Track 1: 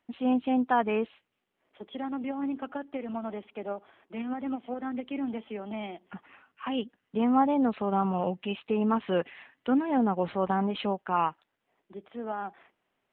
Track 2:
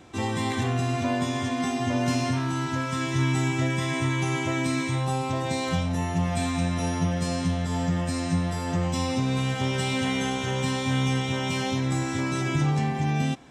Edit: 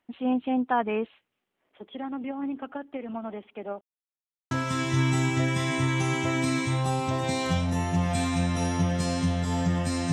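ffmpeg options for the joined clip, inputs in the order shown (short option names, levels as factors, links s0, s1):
-filter_complex "[0:a]apad=whole_dur=10.12,atrim=end=10.12,asplit=2[s0][s1];[s0]atrim=end=3.81,asetpts=PTS-STARTPTS,afade=t=out:st=3.806:d=0.004:c=hsin[s2];[s1]atrim=start=3.81:end=4.51,asetpts=PTS-STARTPTS,volume=0[s3];[1:a]atrim=start=2.73:end=8.34,asetpts=PTS-STARTPTS,afade=t=in:d=0.004:c=hsin[s4];[s2][s3][s4]concat=n=3:v=0:a=1"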